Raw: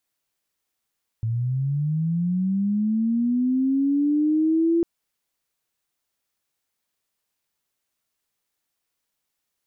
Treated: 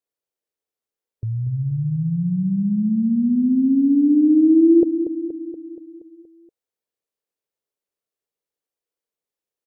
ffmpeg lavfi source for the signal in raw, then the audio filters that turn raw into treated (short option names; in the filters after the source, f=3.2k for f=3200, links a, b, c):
-f lavfi -i "aevalsrc='pow(10,(-21.5+5*t/3.6)/20)*sin(2*PI*(110*t+230*t*t/(2*3.6)))':d=3.6:s=44100"
-filter_complex "[0:a]afftdn=nr=13:nf=-39,equalizer=f=460:w=1.4:g=14,asplit=2[a][b];[b]aecho=0:1:237|474|711|948|1185|1422|1659:0.316|0.187|0.11|0.0649|0.0383|0.0226|0.0133[c];[a][c]amix=inputs=2:normalize=0"